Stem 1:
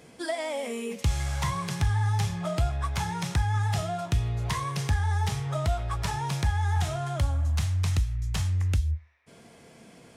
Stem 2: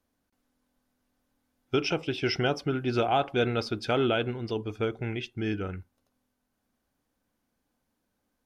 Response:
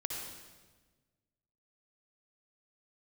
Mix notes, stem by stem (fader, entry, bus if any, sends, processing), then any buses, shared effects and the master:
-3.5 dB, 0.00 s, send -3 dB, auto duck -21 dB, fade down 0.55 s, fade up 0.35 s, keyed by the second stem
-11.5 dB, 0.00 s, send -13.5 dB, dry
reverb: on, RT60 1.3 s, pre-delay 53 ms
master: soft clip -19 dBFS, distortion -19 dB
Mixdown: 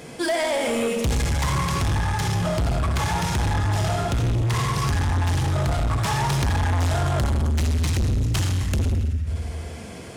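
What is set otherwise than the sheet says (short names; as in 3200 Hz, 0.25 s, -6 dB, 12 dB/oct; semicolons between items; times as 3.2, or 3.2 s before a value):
stem 1 -3.5 dB -> +4.5 dB; reverb return +7.5 dB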